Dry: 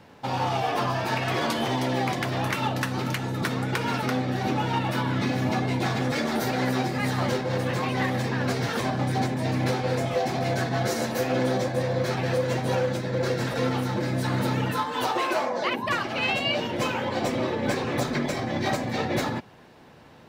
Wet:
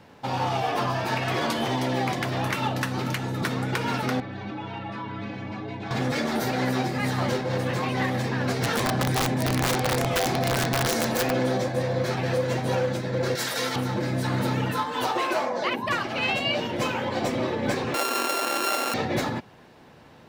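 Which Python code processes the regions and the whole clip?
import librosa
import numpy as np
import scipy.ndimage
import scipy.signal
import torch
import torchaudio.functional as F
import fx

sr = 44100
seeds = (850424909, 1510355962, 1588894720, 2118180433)

y = fx.chain(x, sr, fx.lowpass(hz=3400.0, slope=12),
    fx.stiff_resonator(f0_hz=100.0, decay_s=0.23, stiffness=0.008),
    fx.env_flatten(amount_pct=50), at=(4.2, 5.91))
y = fx.chain(y, sr, fx.overflow_wrap(gain_db=18.0),
    fx.env_flatten(amount_pct=50), at=(8.62, 11.31))
y = fx.chain(y, sr, fx.tilt_eq(slope=4.0),
    fx.notch(hz=2600.0, q=14.0), at=(13.35, 13.76))
y = fx.chain(y, sr, fx.sample_sort(block=32),
    fx.highpass(hz=360.0, slope=24),
    fx.env_flatten(amount_pct=70), at=(17.94, 18.94))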